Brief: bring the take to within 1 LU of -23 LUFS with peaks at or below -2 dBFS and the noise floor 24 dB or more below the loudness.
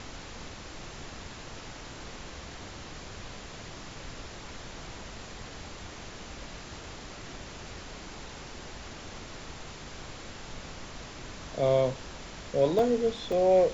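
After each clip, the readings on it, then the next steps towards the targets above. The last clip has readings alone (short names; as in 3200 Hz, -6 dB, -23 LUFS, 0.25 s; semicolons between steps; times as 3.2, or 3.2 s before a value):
dropouts 2; longest dropout 2.7 ms; noise floor -44 dBFS; noise floor target -59 dBFS; loudness -34.5 LUFS; peak -13.0 dBFS; loudness target -23.0 LUFS
-> interpolate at 12.79/13.32, 2.7 ms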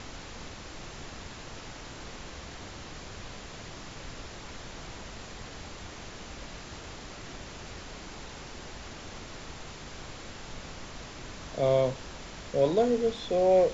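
dropouts 0; noise floor -44 dBFS; noise floor target -59 dBFS
-> noise print and reduce 15 dB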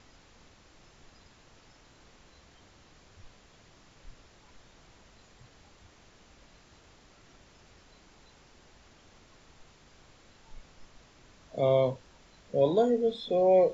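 noise floor -59 dBFS; loudness -27.0 LUFS; peak -13.0 dBFS; loudness target -23.0 LUFS
-> gain +4 dB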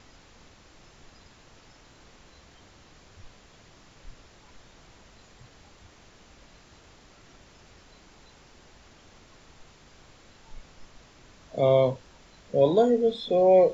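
loudness -23.0 LUFS; peak -9.0 dBFS; noise floor -55 dBFS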